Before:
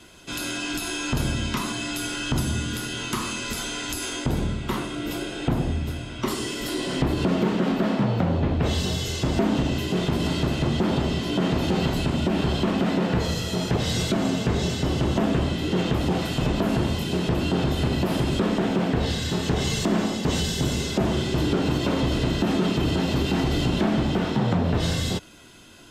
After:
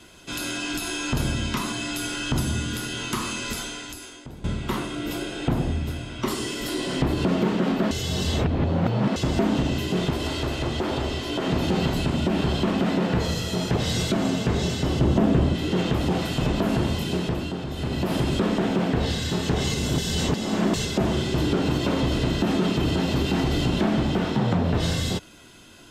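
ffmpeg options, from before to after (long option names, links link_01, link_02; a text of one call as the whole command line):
ffmpeg -i in.wav -filter_complex "[0:a]asettb=1/sr,asplit=3[link_01][link_02][link_03];[link_01]atrim=end=10.114[link_04];[link_02]atrim=start=10.11:end=11.47,asetpts=PTS-STARTPTS,afade=type=in:duration=0.004:curve=qsin,afade=type=out:start_time=1.356:duration=0.004:curve=qsin,equalizer=frequency=180:width_type=o:width=0.61:gain=-15[link_05];[link_03]atrim=start=11.466[link_06];[link_04][link_05]acrossfade=duration=0.004:curve1=hsin:curve2=qsin[link_07];[link_07][link_06]acrossfade=duration=0.004:curve1=qsin:curve2=hsin,asettb=1/sr,asplit=3[link_08][link_09][link_10];[link_08]atrim=end=14.994[link_11];[link_09]atrim=start=14.99:end=15.55,asetpts=PTS-STARTPTS,afade=type=in:duration=0.004:curve=qsin,afade=type=out:start_time=0.556:duration=0.004:curve=qsin,tiltshelf=frequency=820:gain=4[link_12];[link_10]atrim=start=15.546[link_13];[link_11][link_12]acrossfade=duration=0.004:curve1=hsin:curve2=qsin[link_14];[link_14][link_13]acrossfade=duration=0.004:curve1=qsin:curve2=hsin,asplit=8[link_15][link_16][link_17][link_18][link_19][link_20][link_21][link_22];[link_15]atrim=end=4.44,asetpts=PTS-STARTPTS,afade=type=out:start_time=3.52:duration=0.92:curve=qua:silence=0.141254[link_23];[link_16]atrim=start=4.44:end=7.912,asetpts=PTS-STARTPTS,afade=type=in:duration=0.004:curve=hsin:silence=0.141254[link_24];[link_17]atrim=start=7.908:end=9.162,asetpts=PTS-STARTPTS,areverse[link_25];[link_18]atrim=start=9.158:end=17.59,asetpts=PTS-STARTPTS,afade=type=out:start_time=7.942:duration=0.49:silence=0.375837[link_26];[link_19]atrim=start=17.59:end=17.68,asetpts=PTS-STARTPTS,volume=-8.5dB[link_27];[link_20]atrim=start=17.68:end=19.742,asetpts=PTS-STARTPTS,afade=type=in:duration=0.49:silence=0.375837[link_28];[link_21]atrim=start=19.738:end=20.852,asetpts=PTS-STARTPTS,areverse[link_29];[link_22]atrim=start=20.848[link_30];[link_23][link_24]concat=n=2:v=0:a=1[link_31];[link_31][link_25]acrossfade=duration=0.004:curve1=hsin:curve2=hsin[link_32];[link_26][link_27][link_28]concat=n=3:v=0:a=1[link_33];[link_32][link_33]acrossfade=duration=0.004:curve1=hsin:curve2=hsin[link_34];[link_34][link_29]acrossfade=duration=0.004:curve1=hsin:curve2=hsin[link_35];[link_35][link_30]acrossfade=duration=0.004:curve1=hsin:curve2=hsin" out.wav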